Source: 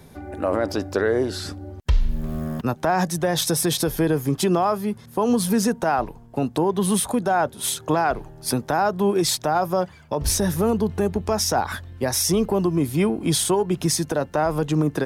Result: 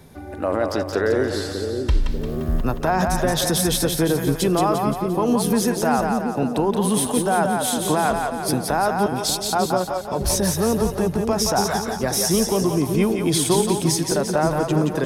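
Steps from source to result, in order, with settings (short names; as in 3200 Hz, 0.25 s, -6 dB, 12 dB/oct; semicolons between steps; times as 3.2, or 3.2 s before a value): 9.06–9.53 inverse Chebyshev band-stop 230–960 Hz, stop band 60 dB; on a send: split-band echo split 470 Hz, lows 0.592 s, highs 0.174 s, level -4 dB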